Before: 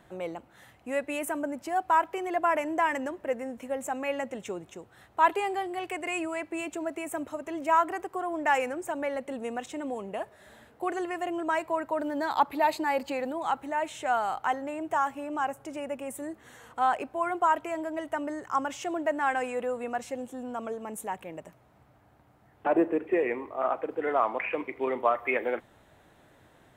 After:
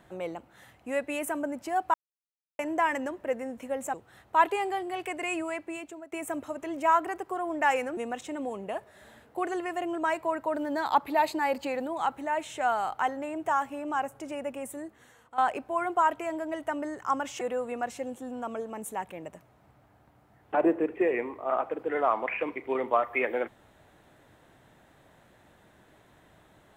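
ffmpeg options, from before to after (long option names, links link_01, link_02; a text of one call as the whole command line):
ffmpeg -i in.wav -filter_complex "[0:a]asplit=8[link_01][link_02][link_03][link_04][link_05][link_06][link_07][link_08];[link_01]atrim=end=1.94,asetpts=PTS-STARTPTS,afade=type=out:start_time=1.936:duration=0.004:curve=hsin[link_09];[link_02]atrim=start=1.94:end=2.59,asetpts=PTS-STARTPTS,volume=0[link_10];[link_03]atrim=start=2.59:end=3.942,asetpts=PTS-STARTPTS,afade=type=in:duration=0.004:curve=hsin[link_11];[link_04]atrim=start=4.778:end=6.96,asetpts=PTS-STARTPTS,afade=type=out:start_time=1.552:duration=0.63:silence=0.11885[link_12];[link_05]atrim=start=6.96:end=8.812,asetpts=PTS-STARTPTS,afade=type=in:duration=0.004:curve=hsin:silence=0.11885[link_13];[link_06]atrim=start=9.418:end=16.83,asetpts=PTS-STARTPTS,afade=type=out:start_time=6.612:duration=0.8:silence=0.199526[link_14];[link_07]atrim=start=16.83:end=18.862,asetpts=PTS-STARTPTS,afade=type=in:duration=0.004:curve=hsin:silence=0.199526[link_15];[link_08]atrim=start=19.528[link_16];[link_09][link_10][link_11]concat=n=3:v=0:a=1[link_17];[link_12][link_13]concat=n=2:v=0:a=1[link_18];[link_17][link_18]acrossfade=duration=0.004:curve1=hsin:curve2=hsin[link_19];[link_14][link_15]concat=n=2:v=0:a=1[link_20];[link_19][link_20]acrossfade=duration=0.004:curve1=hsin:curve2=hsin[link_21];[link_21][link_16]acrossfade=duration=0.004:curve1=hsin:curve2=hsin" out.wav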